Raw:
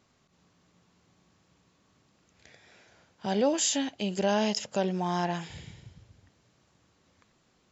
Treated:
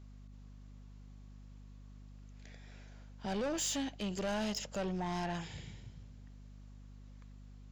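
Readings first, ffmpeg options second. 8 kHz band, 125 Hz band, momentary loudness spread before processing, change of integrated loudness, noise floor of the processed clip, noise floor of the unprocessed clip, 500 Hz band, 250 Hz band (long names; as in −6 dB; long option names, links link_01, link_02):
can't be measured, −5.5 dB, 12 LU, −8.5 dB, −53 dBFS, −69 dBFS, −10.0 dB, −7.5 dB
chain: -af "asoftclip=type=tanh:threshold=-28.5dB,aeval=exprs='val(0)+0.00398*(sin(2*PI*50*n/s)+sin(2*PI*2*50*n/s)/2+sin(2*PI*3*50*n/s)/3+sin(2*PI*4*50*n/s)/4+sin(2*PI*5*50*n/s)/5)':channel_layout=same,volume=-3.5dB"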